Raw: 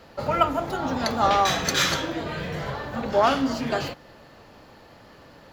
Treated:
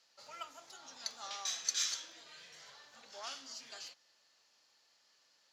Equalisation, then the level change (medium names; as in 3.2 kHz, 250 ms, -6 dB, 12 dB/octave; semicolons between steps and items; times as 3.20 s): band-pass filter 6.1 kHz, Q 2.1; -5.0 dB